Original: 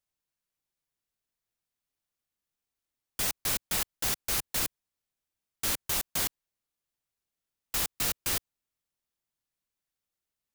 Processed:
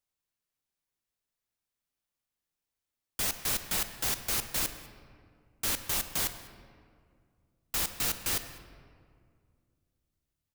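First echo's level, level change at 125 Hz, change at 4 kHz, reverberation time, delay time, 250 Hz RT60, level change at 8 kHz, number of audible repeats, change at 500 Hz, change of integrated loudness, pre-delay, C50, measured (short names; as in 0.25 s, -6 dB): -22.5 dB, -0.5 dB, -0.5 dB, 2.1 s, 0.201 s, 2.8 s, -1.0 dB, 1, -0.5 dB, -1.0 dB, 33 ms, 10.0 dB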